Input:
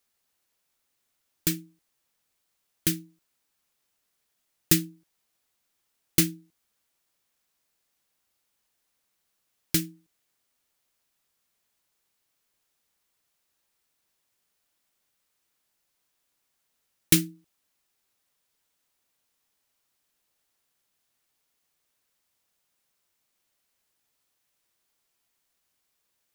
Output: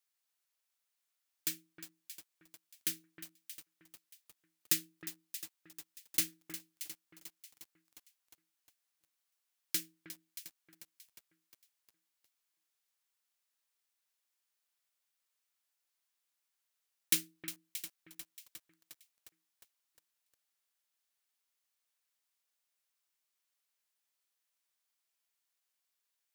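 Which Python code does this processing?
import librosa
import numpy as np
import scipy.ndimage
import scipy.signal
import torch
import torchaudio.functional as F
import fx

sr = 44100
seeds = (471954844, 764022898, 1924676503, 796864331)

y = fx.highpass(x, sr, hz=1200.0, slope=6)
y = fx.echo_alternate(y, sr, ms=314, hz=1900.0, feedback_pct=52, wet_db=-8)
y = fx.echo_crushed(y, sr, ms=357, feedback_pct=80, bits=6, wet_db=-13.0)
y = y * librosa.db_to_amplitude(-8.0)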